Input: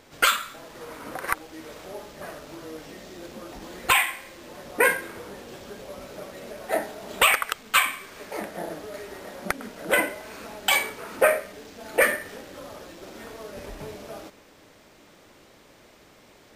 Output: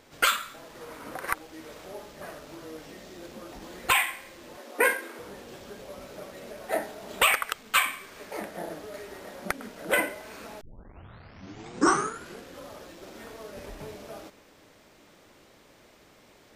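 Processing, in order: 4.57–5.19 steep high-pass 220 Hz 96 dB/oct; 10.61 tape start 2.02 s; gain -3 dB

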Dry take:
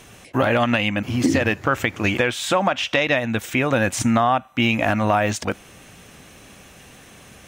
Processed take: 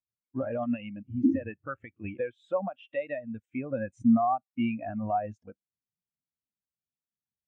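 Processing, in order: spectral expander 2.5:1; gain -7.5 dB

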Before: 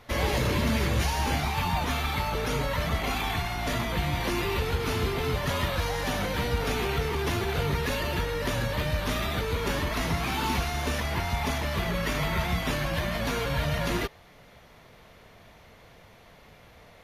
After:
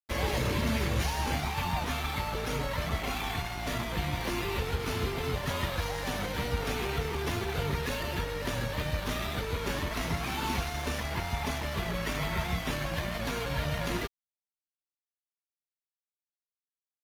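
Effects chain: crossover distortion -39 dBFS; gain -2 dB

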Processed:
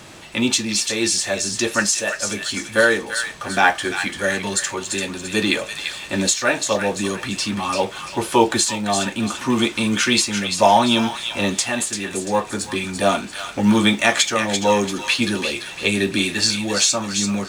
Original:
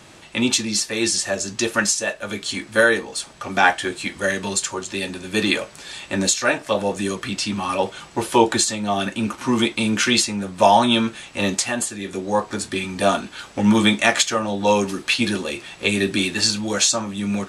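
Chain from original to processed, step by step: G.711 law mismatch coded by mu; on a send: thin delay 0.341 s, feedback 37%, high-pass 1400 Hz, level -6 dB

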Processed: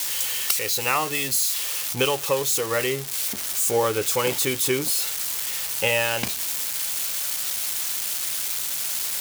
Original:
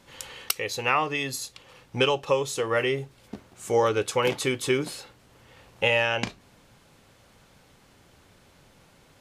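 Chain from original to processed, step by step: switching spikes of -17.5 dBFS

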